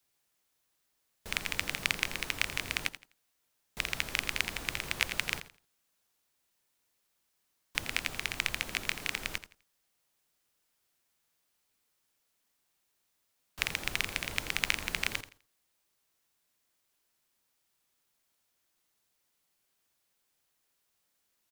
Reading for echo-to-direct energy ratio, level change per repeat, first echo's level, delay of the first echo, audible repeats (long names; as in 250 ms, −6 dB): −13.5 dB, −12.5 dB, −13.5 dB, 84 ms, 2